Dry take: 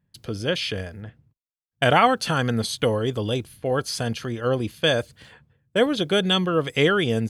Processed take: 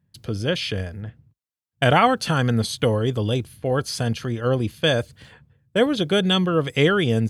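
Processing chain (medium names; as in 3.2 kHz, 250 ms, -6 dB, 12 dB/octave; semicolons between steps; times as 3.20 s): high-pass 63 Hz; bass shelf 150 Hz +8.5 dB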